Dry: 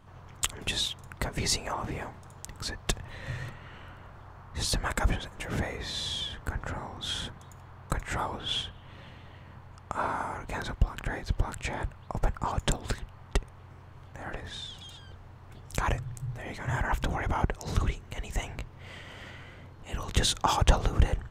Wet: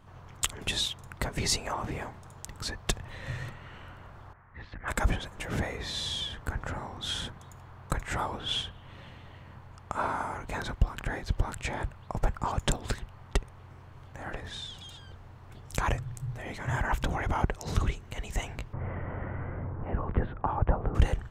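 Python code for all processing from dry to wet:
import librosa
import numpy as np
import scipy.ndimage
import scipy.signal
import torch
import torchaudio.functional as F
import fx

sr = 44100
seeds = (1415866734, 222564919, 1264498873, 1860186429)

y = fx.chain(x, sr, fx.ladder_lowpass(hz=2200.0, resonance_pct=55),
    fx.transformer_sat(knee_hz=220.0), at=(4.33, 4.88))
y = fx.chain(y, sr, fx.bessel_lowpass(hz=1100.0, order=6),
    fx.band_squash(depth_pct=70), at=(18.73, 20.95))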